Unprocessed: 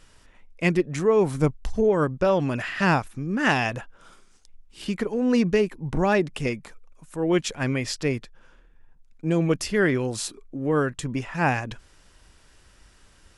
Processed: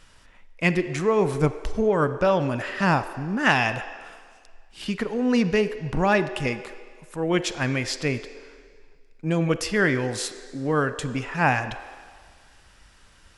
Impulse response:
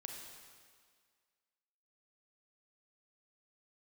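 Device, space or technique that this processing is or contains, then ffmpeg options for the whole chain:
filtered reverb send: -filter_complex "[0:a]asettb=1/sr,asplit=3[link_01][link_02][link_03];[link_01]atrim=end=2.474[link_04];[link_02]atrim=start=2.47:end=3.46,asetpts=PTS-STARTPTS,afade=type=in:duration=0.004:curve=qsin,afade=type=out:start_time=0.986:duration=0.004:curve=qsin,equalizer=frequency=2400:width_type=o:width=1.7:gain=-5.5[link_05];[link_03]atrim=start=3.456[link_06];[link_04][link_05]acrossfade=duration=0.004:curve1=hsin:curve2=qsin[link_07];[link_07][link_06]acrossfade=duration=0.004:curve1=qsin:curve2=hsin,asplit=2[link_08][link_09];[link_09]highpass=frequency=350:width=0.5412,highpass=frequency=350:width=1.3066,lowpass=5900[link_10];[1:a]atrim=start_sample=2205[link_11];[link_10][link_11]afir=irnorm=-1:irlink=0,volume=-2.5dB[link_12];[link_08][link_12]amix=inputs=2:normalize=0"

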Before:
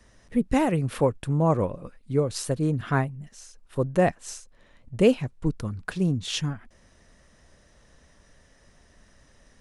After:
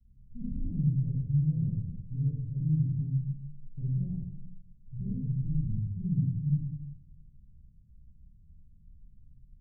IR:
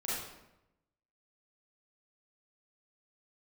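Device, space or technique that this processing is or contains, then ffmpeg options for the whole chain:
club heard from the street: -filter_complex "[0:a]alimiter=limit=-19dB:level=0:latency=1:release=32,lowpass=frequency=160:width=0.5412,lowpass=frequency=160:width=1.3066[link_01];[1:a]atrim=start_sample=2205[link_02];[link_01][link_02]afir=irnorm=-1:irlink=0"

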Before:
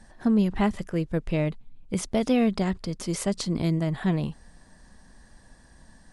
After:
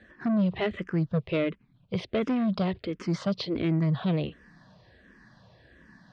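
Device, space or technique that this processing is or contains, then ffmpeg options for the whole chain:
barber-pole phaser into a guitar amplifier: -filter_complex "[0:a]asplit=2[link_01][link_02];[link_02]afreqshift=-1.4[link_03];[link_01][link_03]amix=inputs=2:normalize=1,asoftclip=type=tanh:threshold=-24.5dB,highpass=110,equalizer=frequency=120:width_type=q:width=4:gain=4,equalizer=frequency=240:width_type=q:width=4:gain=-5,equalizer=frequency=840:width_type=q:width=4:gain=-8,lowpass=frequency=4000:width=0.5412,lowpass=frequency=4000:width=1.3066,volume=6dB"

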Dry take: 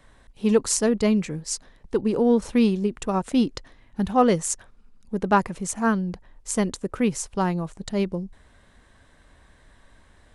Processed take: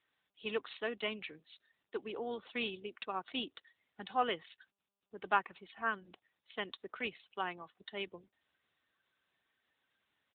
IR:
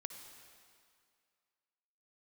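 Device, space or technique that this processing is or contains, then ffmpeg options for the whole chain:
mobile call with aggressive noise cancelling: -af "highpass=frequency=100:width=0.5412,highpass=frequency=100:width=1.3066,highpass=frequency=140:width=0.5412,highpass=frequency=140:width=1.3066,aderivative,aecho=1:1:2.7:0.31,afftdn=noise_reduction=23:noise_floor=-59,volume=6.5dB" -ar 8000 -c:a libopencore_amrnb -b:a 10200

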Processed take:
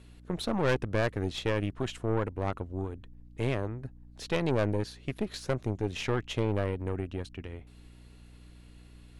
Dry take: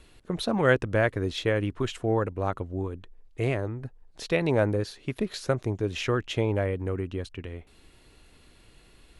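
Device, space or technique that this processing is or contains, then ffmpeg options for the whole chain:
valve amplifier with mains hum: -af "aeval=exprs='(tanh(11.2*val(0)+0.7)-tanh(0.7))/11.2':channel_layout=same,aeval=exprs='val(0)+0.00282*(sin(2*PI*60*n/s)+sin(2*PI*2*60*n/s)/2+sin(2*PI*3*60*n/s)/3+sin(2*PI*4*60*n/s)/4+sin(2*PI*5*60*n/s)/5)':channel_layout=same"

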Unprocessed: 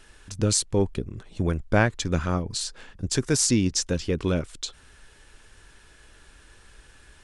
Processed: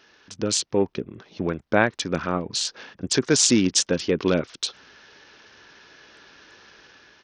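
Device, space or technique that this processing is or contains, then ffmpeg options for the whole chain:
Bluetooth headset: -af "highpass=210,dynaudnorm=framelen=240:gausssize=5:maxgain=6dB,aresample=16000,aresample=44100" -ar 48000 -c:a sbc -b:a 64k

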